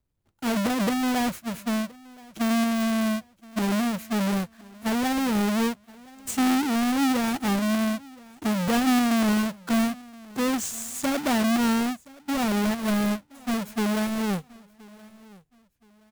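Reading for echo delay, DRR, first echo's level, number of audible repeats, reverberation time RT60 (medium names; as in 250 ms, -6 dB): 1022 ms, no reverb, -23.0 dB, 2, no reverb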